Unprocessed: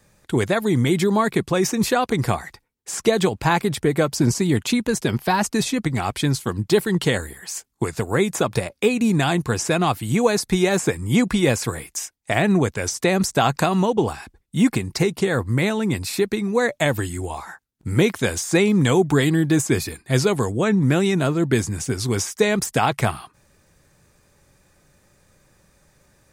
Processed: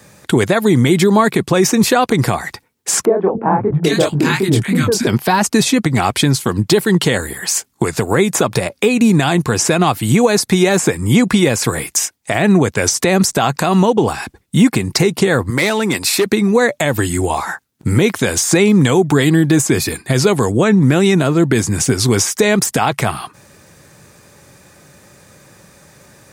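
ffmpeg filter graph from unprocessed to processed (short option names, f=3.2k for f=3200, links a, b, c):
-filter_complex "[0:a]asettb=1/sr,asplit=3[a][b][c];[a]atrim=end=3.054[d];[b]atrim=start=3.05:end=5.07,asetpts=PTS-STARTPTS,afade=t=in:d=0.004:c=qsin,afade=t=out:st=2.016:d=0.004:c=qsin,acrossover=split=220|1200[e][f][g];[e]adelay=280[h];[g]adelay=790[i];[h][f][i]amix=inputs=3:normalize=0,atrim=end_sample=89082,flanger=delay=20:depth=7.4:speed=2.8[j];[c]atrim=start=5.066[k];[d][j]acrossfade=d=0.004:c1=hsin:c2=qsin[l];[l][k]acrossfade=d=0.004:c1=qsin:c2=hsin,asettb=1/sr,asplit=3[m][n][o];[m]atrim=end=15.504[p];[n]atrim=start=15.5:end=16.26,asetpts=PTS-STARTPTS,afade=t=in:d=0.004:c=qsin,afade=t=out:st=0.756:d=0.004:c=qsin,highpass=f=530:p=1,asoftclip=type=hard:threshold=-20dB[q];[o]atrim=start=16.256[r];[p][q]acrossfade=d=0.004:c1=hsin:c2=qsin[s];[s][r]acrossfade=d=0.004:c1=qsin:c2=hsin,highpass=100,acompressor=threshold=-28dB:ratio=2,alimiter=level_in=15.5dB:limit=-1dB:release=50:level=0:latency=1,volume=-1dB"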